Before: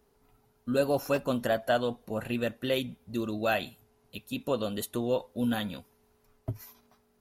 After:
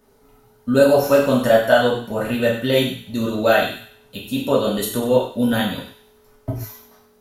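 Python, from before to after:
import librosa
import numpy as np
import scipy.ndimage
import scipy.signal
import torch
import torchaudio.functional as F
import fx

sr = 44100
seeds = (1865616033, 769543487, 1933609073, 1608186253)

p1 = fx.peak_eq(x, sr, hz=2600.0, db=-4.0, octaves=0.22)
p2 = p1 + fx.echo_wet_highpass(p1, sr, ms=97, feedback_pct=39, hz=1400.0, wet_db=-11, dry=0)
p3 = fx.rev_gated(p2, sr, seeds[0], gate_ms=170, shape='falling', drr_db=-4.5)
y = p3 * 10.0 ** (6.5 / 20.0)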